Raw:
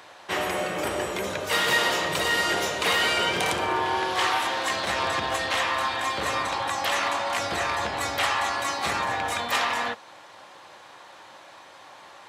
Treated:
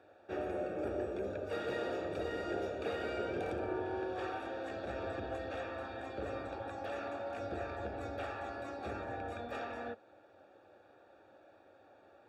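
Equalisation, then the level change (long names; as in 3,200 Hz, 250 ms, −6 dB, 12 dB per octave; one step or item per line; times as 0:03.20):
moving average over 43 samples
parametric band 160 Hz −13.5 dB 0.68 octaves
−2.5 dB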